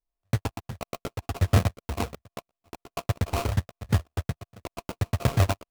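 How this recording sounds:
a buzz of ramps at a fixed pitch in blocks of 64 samples
phaser sweep stages 8, 1.4 Hz, lowest notch 140–3,400 Hz
aliases and images of a low sample rate 1,800 Hz, jitter 20%

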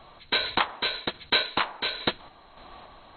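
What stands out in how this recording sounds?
sample-and-hold tremolo
MP2

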